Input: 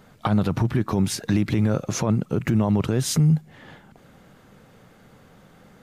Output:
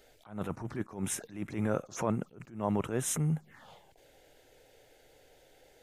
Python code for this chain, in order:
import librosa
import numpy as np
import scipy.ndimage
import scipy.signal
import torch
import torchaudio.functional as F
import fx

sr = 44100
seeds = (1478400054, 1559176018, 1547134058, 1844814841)

y = fx.peak_eq(x, sr, hz=110.0, db=-11.5, octaves=2.8)
y = fx.env_phaser(y, sr, low_hz=170.0, high_hz=4600.0, full_db=-25.5)
y = fx.attack_slew(y, sr, db_per_s=150.0)
y = F.gain(torch.from_numpy(y), -2.0).numpy()